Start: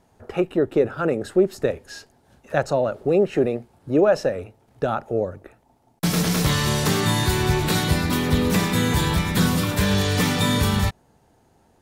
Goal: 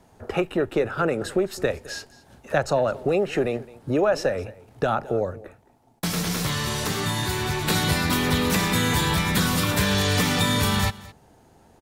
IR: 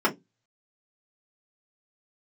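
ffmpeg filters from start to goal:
-filter_complex "[0:a]acrossover=split=82|750[a][b][c];[a]acompressor=threshold=-39dB:ratio=4[d];[b]acompressor=threshold=-28dB:ratio=4[e];[c]acompressor=threshold=-27dB:ratio=4[f];[d][e][f]amix=inputs=3:normalize=0,asplit=3[g][h][i];[g]afade=t=out:st=5.31:d=0.02[j];[h]flanger=delay=7.2:depth=4.1:regen=-64:speed=1.7:shape=triangular,afade=t=in:st=5.31:d=0.02,afade=t=out:st=7.67:d=0.02[k];[i]afade=t=in:st=7.67:d=0.02[l];[j][k][l]amix=inputs=3:normalize=0,aecho=1:1:214:0.1,volume=4.5dB"

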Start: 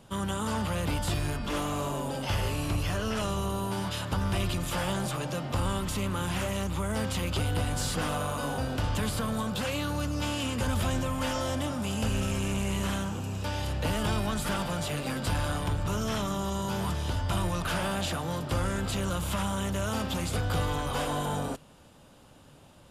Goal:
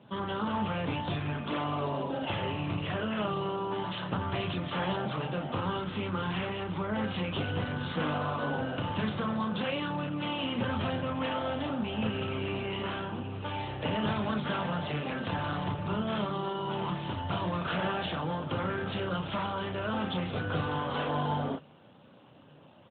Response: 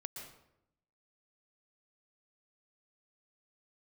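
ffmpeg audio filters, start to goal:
-filter_complex "[0:a]asettb=1/sr,asplit=3[a][b][c];[a]atrim=end=5.564[d];[b]atrim=start=5.56:end=6.71,asetpts=PTS-STARTPTS,afade=t=in:d=0.004:c=qsin,afade=t=out:st=1.146:d=0.004:c=qsin,equalizer=f=630:w=7.9:g=-5.5[e];[c]atrim=start=6.706[f];[d][e]acrossfade=d=0.004:c1=hsin:c2=qsin[g];[g][f]acrossfade=d=0.004:c1=qsin:c2=hsin,asettb=1/sr,asplit=3[h][i][j];[h]atrim=end=15.304[k];[i]atrim=start=15.3:end=16.89,asetpts=PTS-STARTPTS,afade=t=in:d=0.004:c=qsin,afade=t=out:st=1.586:d=0.004:c=qsin,asoftclip=type=hard:threshold=-22dB[l];[j]atrim=start=16.886[m];[k][l]acrossfade=d=0.004:c1=hsin:c2=qsin[n];[n][m]acrossfade=d=0.004:c1=qsin:c2=hsin,equalizer=f=67:w=1.8:g=-13.5,aecho=1:1:33|49:0.596|0.133" -ar 8000 -c:a libopencore_amrnb -b:a 12200

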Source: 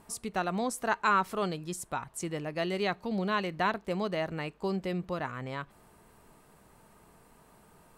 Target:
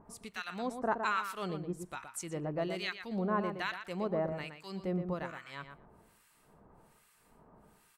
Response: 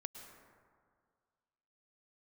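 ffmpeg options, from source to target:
-filter_complex "[0:a]acrossover=split=1400[a][b];[a]aeval=exprs='val(0)*(1-1/2+1/2*cos(2*PI*1.2*n/s))':c=same[c];[b]aeval=exprs='val(0)*(1-1/2-1/2*cos(2*PI*1.2*n/s))':c=same[d];[c][d]amix=inputs=2:normalize=0,asplit=2[e][f];[f]adelay=119,lowpass=f=2.4k:p=1,volume=-7dB,asplit=2[g][h];[h]adelay=119,lowpass=f=2.4k:p=1,volume=0.15,asplit=2[i][j];[j]adelay=119,lowpass=f=2.4k:p=1,volume=0.15[k];[e][g][i][k]amix=inputs=4:normalize=0"

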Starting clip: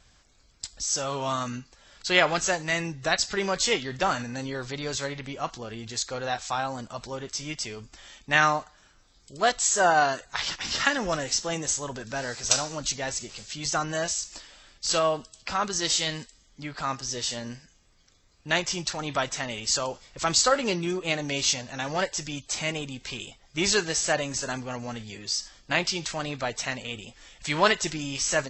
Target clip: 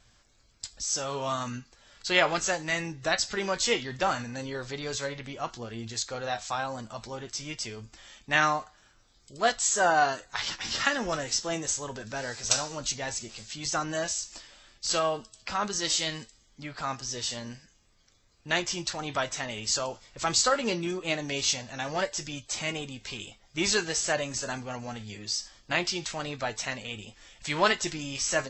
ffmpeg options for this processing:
-af "flanger=delay=8.4:depth=1.3:regen=68:speed=0.54:shape=triangular,volume=2dB"

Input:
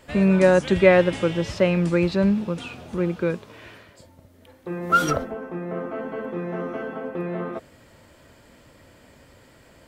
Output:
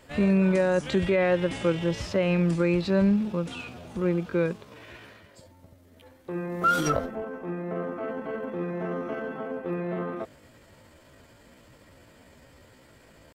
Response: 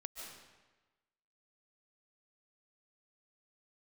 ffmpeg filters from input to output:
-af "alimiter=limit=-12dB:level=0:latency=1:release=70,atempo=0.74,volume=-2dB"

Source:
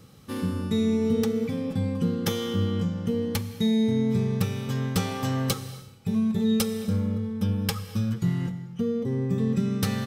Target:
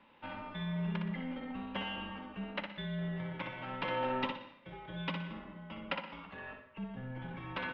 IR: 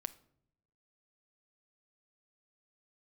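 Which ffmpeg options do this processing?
-filter_complex "[0:a]atempo=1.3,asplit=2[a][b];[b]aeval=exprs='clip(val(0),-1,0.0335)':c=same,volume=-9dB[c];[a][c]amix=inputs=2:normalize=0,aecho=1:1:61|122|183|244:0.531|0.175|0.0578|0.0191,highpass=f=560:t=q:w=0.5412,highpass=f=560:t=q:w=1.307,lowpass=f=3.2k:t=q:w=0.5176,lowpass=f=3.2k:t=q:w=0.7071,lowpass=f=3.2k:t=q:w=1.932,afreqshift=-270,volume=-3.5dB"

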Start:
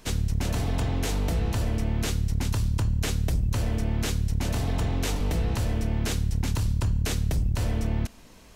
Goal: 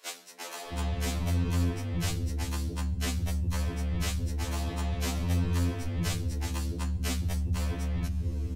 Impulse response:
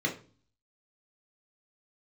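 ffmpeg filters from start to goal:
-filter_complex "[0:a]acrossover=split=440[a][b];[a]adelay=660[c];[c][b]amix=inputs=2:normalize=0,aeval=exprs='0.224*(cos(1*acos(clip(val(0)/0.224,-1,1)))-cos(1*PI/2))+0.00355*(cos(7*acos(clip(val(0)/0.224,-1,1)))-cos(7*PI/2))':c=same,afftfilt=real='re*2*eq(mod(b,4),0)':imag='im*2*eq(mod(b,4),0)':win_size=2048:overlap=0.75"

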